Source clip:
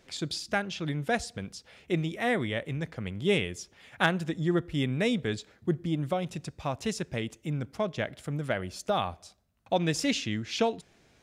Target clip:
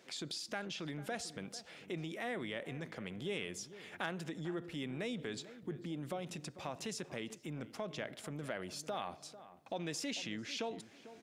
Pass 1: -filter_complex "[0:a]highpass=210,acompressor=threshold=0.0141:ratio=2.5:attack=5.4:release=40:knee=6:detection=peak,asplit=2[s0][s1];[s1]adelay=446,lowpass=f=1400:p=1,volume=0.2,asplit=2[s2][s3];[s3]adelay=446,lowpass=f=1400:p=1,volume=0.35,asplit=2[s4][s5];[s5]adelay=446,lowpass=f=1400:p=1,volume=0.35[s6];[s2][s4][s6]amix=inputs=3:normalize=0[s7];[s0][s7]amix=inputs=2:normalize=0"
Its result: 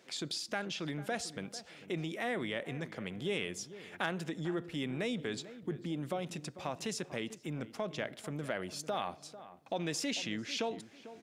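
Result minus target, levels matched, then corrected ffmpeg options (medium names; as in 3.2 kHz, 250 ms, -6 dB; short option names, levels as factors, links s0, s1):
compression: peak gain reduction -4.5 dB
-filter_complex "[0:a]highpass=210,acompressor=threshold=0.00596:ratio=2.5:attack=5.4:release=40:knee=6:detection=peak,asplit=2[s0][s1];[s1]adelay=446,lowpass=f=1400:p=1,volume=0.2,asplit=2[s2][s3];[s3]adelay=446,lowpass=f=1400:p=1,volume=0.35,asplit=2[s4][s5];[s5]adelay=446,lowpass=f=1400:p=1,volume=0.35[s6];[s2][s4][s6]amix=inputs=3:normalize=0[s7];[s0][s7]amix=inputs=2:normalize=0"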